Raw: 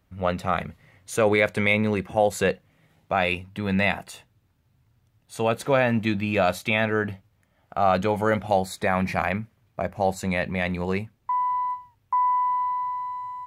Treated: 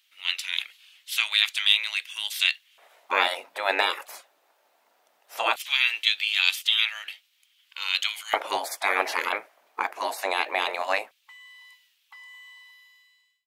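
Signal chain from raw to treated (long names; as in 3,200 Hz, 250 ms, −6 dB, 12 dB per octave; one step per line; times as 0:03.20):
fade-out on the ending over 0.98 s
gate on every frequency bin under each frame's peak −15 dB weak
auto-filter high-pass square 0.18 Hz 650–3,100 Hz
0:08.23–0:08.74: multiband upward and downward expander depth 40%
level +9 dB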